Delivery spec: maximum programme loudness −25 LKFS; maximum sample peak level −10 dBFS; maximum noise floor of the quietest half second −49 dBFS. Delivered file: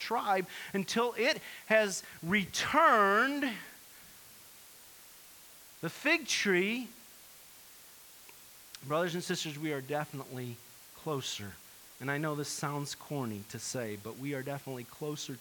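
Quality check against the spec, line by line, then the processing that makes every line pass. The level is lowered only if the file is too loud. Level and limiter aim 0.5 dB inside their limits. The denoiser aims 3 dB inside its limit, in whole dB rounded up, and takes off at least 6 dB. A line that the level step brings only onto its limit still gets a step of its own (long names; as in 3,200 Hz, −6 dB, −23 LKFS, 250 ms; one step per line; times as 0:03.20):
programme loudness −32.5 LKFS: in spec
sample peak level −12.0 dBFS: in spec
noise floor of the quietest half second −55 dBFS: in spec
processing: no processing needed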